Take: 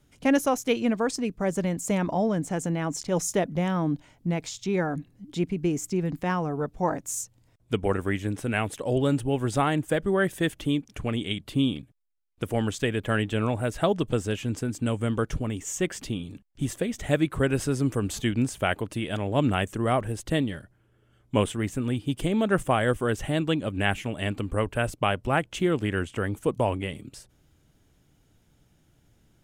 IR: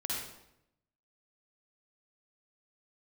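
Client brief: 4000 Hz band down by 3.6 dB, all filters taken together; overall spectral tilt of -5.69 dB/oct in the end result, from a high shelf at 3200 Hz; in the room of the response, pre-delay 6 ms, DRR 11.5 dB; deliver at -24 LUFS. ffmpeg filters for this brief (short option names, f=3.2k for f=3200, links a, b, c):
-filter_complex "[0:a]highshelf=f=3.2k:g=4,equalizer=f=4k:t=o:g=-8.5,asplit=2[a][b];[1:a]atrim=start_sample=2205,adelay=6[c];[b][c]afir=irnorm=-1:irlink=0,volume=-15dB[d];[a][d]amix=inputs=2:normalize=0,volume=3dB"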